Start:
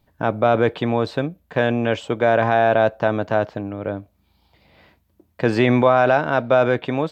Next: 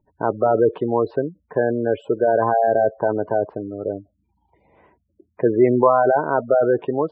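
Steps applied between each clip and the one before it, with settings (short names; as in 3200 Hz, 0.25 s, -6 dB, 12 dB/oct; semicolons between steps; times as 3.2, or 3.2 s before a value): LPF 6600 Hz 12 dB/oct; spectral gate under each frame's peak -15 dB strong; fifteen-band EQ 400 Hz +12 dB, 1000 Hz +11 dB, 4000 Hz -12 dB; gain -6 dB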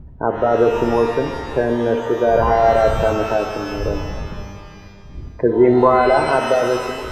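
ending faded out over 0.63 s; wind noise 87 Hz -33 dBFS; shimmer reverb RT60 2 s, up +12 st, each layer -8 dB, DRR 4.5 dB; gain +1 dB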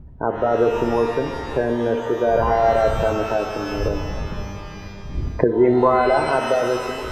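recorder AGC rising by 7.1 dB/s; gain -3 dB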